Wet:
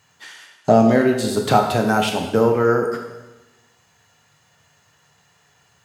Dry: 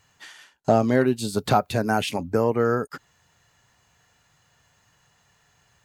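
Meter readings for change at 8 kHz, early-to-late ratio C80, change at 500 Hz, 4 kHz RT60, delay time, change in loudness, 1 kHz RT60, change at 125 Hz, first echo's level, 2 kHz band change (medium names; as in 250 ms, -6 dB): +5.0 dB, 7.5 dB, +5.5 dB, 1.0 s, no echo, +5.0 dB, 1.1 s, +3.0 dB, no echo, +5.0 dB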